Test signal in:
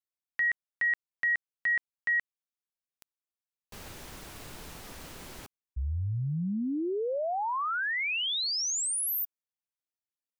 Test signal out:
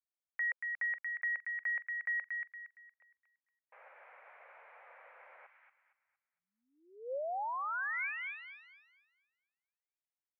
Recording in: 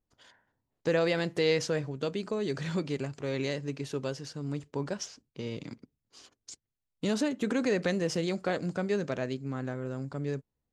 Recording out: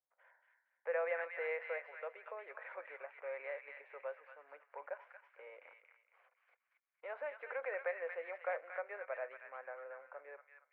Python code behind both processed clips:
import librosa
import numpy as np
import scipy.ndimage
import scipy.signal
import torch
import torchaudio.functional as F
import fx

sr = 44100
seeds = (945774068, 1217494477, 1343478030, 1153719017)

p1 = scipy.signal.sosfilt(scipy.signal.ellip(4, 1.0, 80, [520.0, 2300.0], 'bandpass', fs=sr, output='sos'), x)
p2 = p1 + fx.echo_wet_highpass(p1, sr, ms=232, feedback_pct=33, hz=1500.0, wet_db=-3.0, dry=0)
y = p2 * librosa.db_to_amplitude(-6.0)